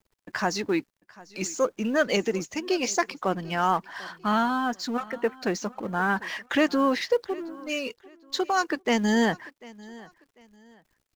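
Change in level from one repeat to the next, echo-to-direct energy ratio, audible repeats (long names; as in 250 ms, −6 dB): −10.5 dB, −21.0 dB, 2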